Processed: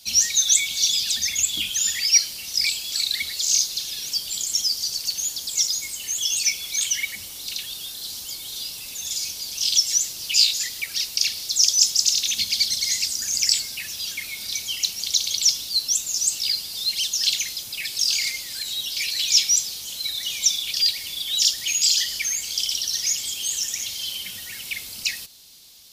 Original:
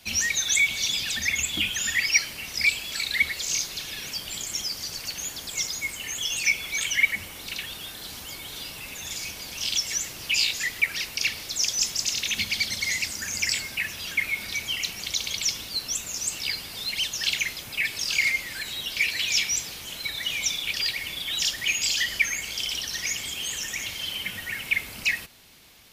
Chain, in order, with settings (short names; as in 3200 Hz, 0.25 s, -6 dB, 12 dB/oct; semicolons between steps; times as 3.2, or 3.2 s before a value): resonant high shelf 3000 Hz +12 dB, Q 1.5; gain -6.5 dB